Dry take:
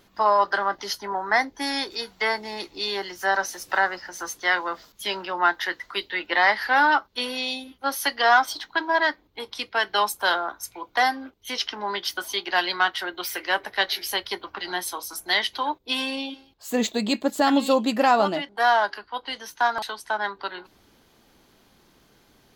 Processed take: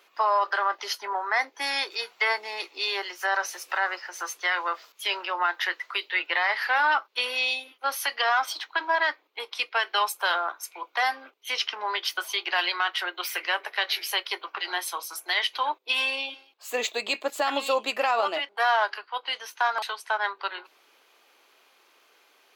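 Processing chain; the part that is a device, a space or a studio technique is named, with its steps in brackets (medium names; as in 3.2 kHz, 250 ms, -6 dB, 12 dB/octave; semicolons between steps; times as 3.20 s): laptop speaker (high-pass 410 Hz 24 dB/octave; peaking EQ 1.2 kHz +5 dB 0.49 oct; peaking EQ 2.5 kHz +9 dB 0.56 oct; peak limiter -12 dBFS, peak gain reduction 9 dB); trim -2.5 dB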